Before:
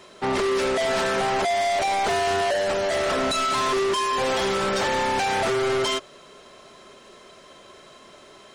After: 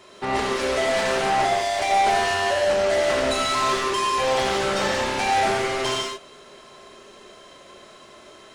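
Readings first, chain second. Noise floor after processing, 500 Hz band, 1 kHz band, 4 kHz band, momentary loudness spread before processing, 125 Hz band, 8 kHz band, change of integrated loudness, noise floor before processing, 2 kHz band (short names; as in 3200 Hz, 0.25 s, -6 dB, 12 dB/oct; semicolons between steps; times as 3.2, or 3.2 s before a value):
-47 dBFS, +0.5 dB, +2.0 dB, +1.5 dB, 1 LU, +0.5 dB, +1.5 dB, +1.0 dB, -49 dBFS, +2.0 dB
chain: non-linear reverb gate 0.21 s flat, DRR -2 dB; gain -2.5 dB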